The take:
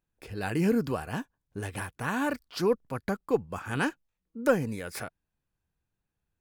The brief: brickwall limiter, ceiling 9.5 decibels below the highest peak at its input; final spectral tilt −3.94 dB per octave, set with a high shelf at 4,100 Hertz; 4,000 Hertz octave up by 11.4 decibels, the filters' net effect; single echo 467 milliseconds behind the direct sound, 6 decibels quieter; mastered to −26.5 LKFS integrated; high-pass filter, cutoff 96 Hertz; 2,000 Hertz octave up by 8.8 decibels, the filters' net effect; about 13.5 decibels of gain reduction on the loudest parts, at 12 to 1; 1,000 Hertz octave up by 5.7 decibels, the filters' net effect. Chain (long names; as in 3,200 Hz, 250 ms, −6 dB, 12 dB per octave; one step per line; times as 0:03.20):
high-pass filter 96 Hz
parametric band 1,000 Hz +4 dB
parametric band 2,000 Hz +7.5 dB
parametric band 4,000 Hz +8.5 dB
high-shelf EQ 4,100 Hz +6.5 dB
downward compressor 12 to 1, threshold −28 dBFS
brickwall limiter −23.5 dBFS
single-tap delay 467 ms −6 dB
level +9.5 dB